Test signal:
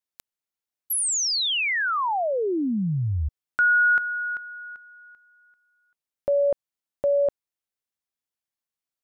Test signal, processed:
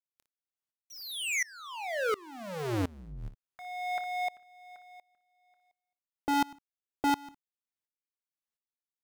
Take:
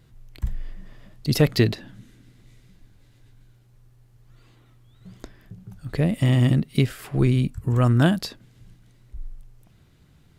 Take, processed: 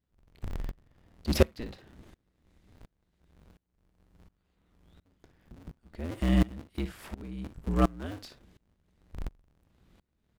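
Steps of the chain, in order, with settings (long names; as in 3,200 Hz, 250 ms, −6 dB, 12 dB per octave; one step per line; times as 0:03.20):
sub-harmonics by changed cycles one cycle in 2, inverted
high-shelf EQ 4,800 Hz −4.5 dB
on a send: ambience of single reflections 26 ms −16 dB, 58 ms −14.5 dB
on the sum: tremolo with a ramp in dB swelling 1.4 Hz, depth 26 dB
level −2 dB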